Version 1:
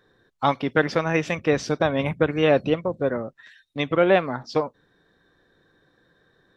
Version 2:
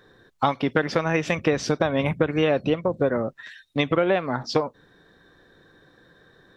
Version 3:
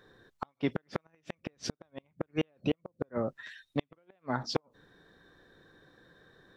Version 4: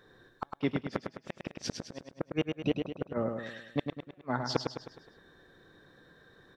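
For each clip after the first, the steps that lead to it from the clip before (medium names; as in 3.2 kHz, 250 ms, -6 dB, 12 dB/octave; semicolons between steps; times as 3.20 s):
compression 6:1, threshold -25 dBFS, peak gain reduction 12 dB; trim +7 dB
inverted gate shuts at -11 dBFS, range -42 dB; trim -5 dB
feedback delay 104 ms, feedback 48%, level -5.5 dB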